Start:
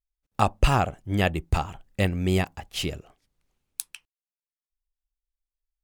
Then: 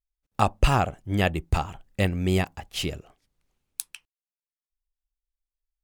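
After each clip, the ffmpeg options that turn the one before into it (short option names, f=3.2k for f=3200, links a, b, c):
-af anull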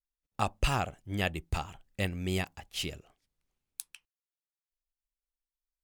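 -af "adynamicequalizer=threshold=0.0126:dfrequency=1700:dqfactor=0.7:tfrequency=1700:tqfactor=0.7:attack=5:release=100:ratio=0.375:range=3:mode=boostabove:tftype=highshelf,volume=-9dB"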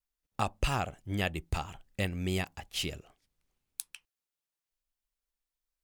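-af "acompressor=threshold=-36dB:ratio=1.5,volume=3dB"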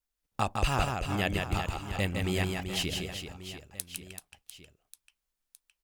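-af "aecho=1:1:160|384|697.6|1137|1751:0.631|0.398|0.251|0.158|0.1,volume=1.5dB"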